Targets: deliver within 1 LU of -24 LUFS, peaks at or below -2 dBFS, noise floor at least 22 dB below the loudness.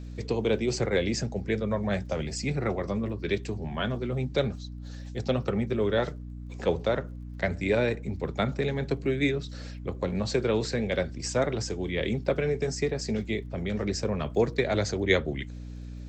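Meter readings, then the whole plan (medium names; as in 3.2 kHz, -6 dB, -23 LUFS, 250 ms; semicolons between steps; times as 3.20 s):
tick rate 30 per s; hum 60 Hz; highest harmonic 300 Hz; hum level -37 dBFS; loudness -29.0 LUFS; peak level -8.0 dBFS; loudness target -24.0 LUFS
-> de-click; de-hum 60 Hz, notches 5; trim +5 dB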